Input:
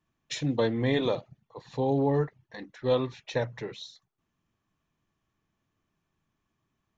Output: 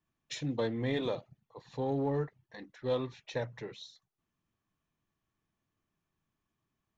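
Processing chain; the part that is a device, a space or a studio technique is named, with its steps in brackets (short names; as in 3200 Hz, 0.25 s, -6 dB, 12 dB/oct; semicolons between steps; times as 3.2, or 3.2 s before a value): parallel distortion (in parallel at -13 dB: hard clip -27 dBFS, distortion -8 dB); on the sum: gain -7.5 dB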